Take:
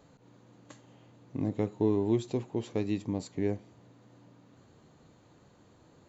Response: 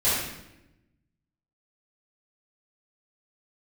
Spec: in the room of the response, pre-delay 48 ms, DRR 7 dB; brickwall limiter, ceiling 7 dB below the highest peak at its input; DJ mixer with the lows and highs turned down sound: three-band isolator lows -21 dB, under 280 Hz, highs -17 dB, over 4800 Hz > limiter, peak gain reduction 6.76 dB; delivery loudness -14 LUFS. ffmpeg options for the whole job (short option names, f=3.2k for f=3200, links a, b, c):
-filter_complex "[0:a]alimiter=limit=-22.5dB:level=0:latency=1,asplit=2[a][b];[1:a]atrim=start_sample=2205,adelay=48[c];[b][c]afir=irnorm=-1:irlink=0,volume=-21.5dB[d];[a][d]amix=inputs=2:normalize=0,acrossover=split=280 4800:gain=0.0891 1 0.141[e][f][g];[e][f][g]amix=inputs=3:normalize=0,volume=28dB,alimiter=limit=-3.5dB:level=0:latency=1"